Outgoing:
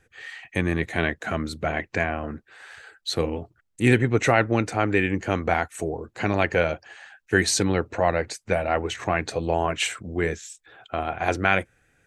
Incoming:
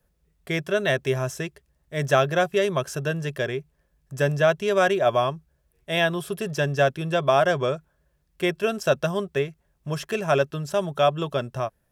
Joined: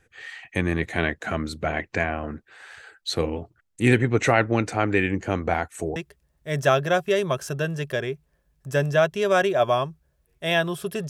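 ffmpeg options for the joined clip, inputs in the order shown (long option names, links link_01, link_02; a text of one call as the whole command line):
ffmpeg -i cue0.wav -i cue1.wav -filter_complex "[0:a]asettb=1/sr,asplit=3[link_01][link_02][link_03];[link_01]atrim=end=5.114[link_04];[link_02]atrim=start=5.11:end=5.96,asetpts=PTS-STARTPTS,afade=type=in:duration=0.004:curve=qsin,afade=type=out:start_time=0.846:duration=0.004:curve=qsin,equalizer=frequency=2600:width_type=o:width=2.8:gain=-3.5[link_05];[link_03]atrim=start=5.956[link_06];[link_04][link_05]acrossfade=duration=0.004:curve1=hsin:curve2=qsin[link_07];[link_07][link_06]acrossfade=duration=0.004:curve1=qsin:curve2=hsin,apad=whole_dur=11.09,atrim=end=11.09,atrim=end=5.962[link_08];[1:a]atrim=start=1.418:end=6.55[link_09];[link_08][link_09]acrossfade=duration=0.004:curve1=hsin:curve2=hsin" out.wav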